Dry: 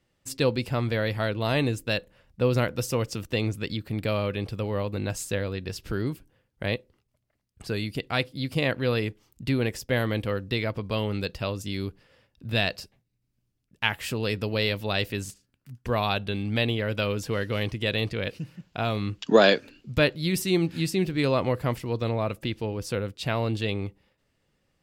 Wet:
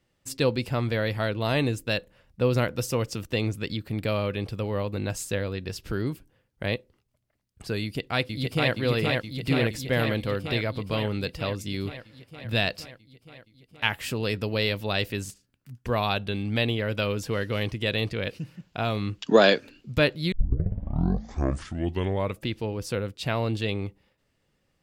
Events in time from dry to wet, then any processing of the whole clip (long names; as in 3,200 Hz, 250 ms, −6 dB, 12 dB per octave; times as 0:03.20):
0:07.82–0:08.74: delay throw 470 ms, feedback 75%, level −2 dB
0:20.32: tape start 2.11 s